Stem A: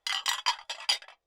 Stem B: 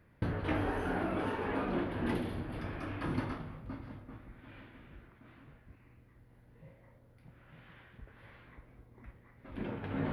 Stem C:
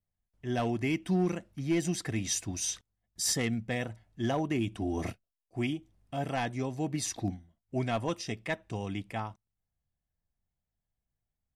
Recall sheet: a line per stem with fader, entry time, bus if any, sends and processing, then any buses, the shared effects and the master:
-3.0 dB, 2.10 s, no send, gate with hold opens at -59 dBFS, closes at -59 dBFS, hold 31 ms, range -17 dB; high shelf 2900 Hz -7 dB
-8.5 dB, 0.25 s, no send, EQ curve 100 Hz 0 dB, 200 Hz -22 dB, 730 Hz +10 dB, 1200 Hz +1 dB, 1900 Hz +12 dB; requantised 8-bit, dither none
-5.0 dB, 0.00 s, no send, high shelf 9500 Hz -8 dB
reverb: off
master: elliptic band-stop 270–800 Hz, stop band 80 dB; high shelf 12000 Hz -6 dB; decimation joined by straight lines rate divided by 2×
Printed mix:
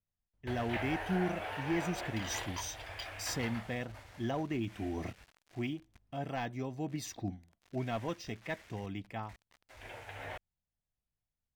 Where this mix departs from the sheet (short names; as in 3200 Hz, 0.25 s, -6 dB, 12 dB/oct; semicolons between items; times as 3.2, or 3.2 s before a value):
stem A -3.0 dB -> -13.0 dB; master: missing elliptic band-stop 270–800 Hz, stop band 80 dB